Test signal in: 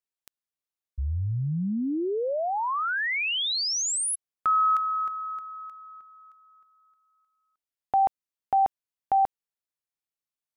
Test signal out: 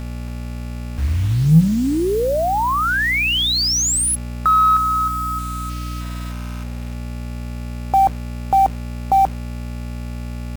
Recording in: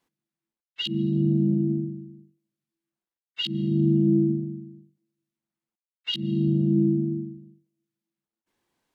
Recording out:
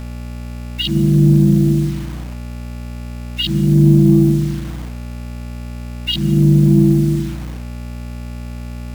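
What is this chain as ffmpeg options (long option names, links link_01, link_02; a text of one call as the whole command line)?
ffmpeg -i in.wav -filter_complex "[0:a]equalizer=frequency=160:width=7.3:gain=14,aeval=exprs='val(0)+0.0178*(sin(2*PI*60*n/s)+sin(2*PI*2*60*n/s)/2+sin(2*PI*3*60*n/s)/3+sin(2*PI*4*60*n/s)/4+sin(2*PI*5*60*n/s)/5)':channel_layout=same,asplit=2[link_01][link_02];[link_02]asoftclip=type=tanh:threshold=-26.5dB,volume=-10dB[link_03];[link_01][link_03]amix=inputs=2:normalize=0,afftfilt=real='re*gte(hypot(re,im),0.01)':imag='im*gte(hypot(re,im),0.01)':win_size=1024:overlap=0.75,acrusher=bits=6:mix=0:aa=0.000001,volume=7dB" out.wav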